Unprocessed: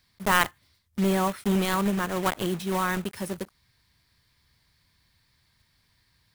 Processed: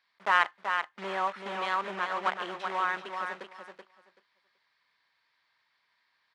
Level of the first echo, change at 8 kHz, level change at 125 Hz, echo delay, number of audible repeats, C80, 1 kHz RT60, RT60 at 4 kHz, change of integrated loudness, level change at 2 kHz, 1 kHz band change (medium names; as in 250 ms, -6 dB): -6.0 dB, under -15 dB, under -20 dB, 381 ms, 2, no reverb, no reverb, no reverb, -4.0 dB, -0.5 dB, 0.0 dB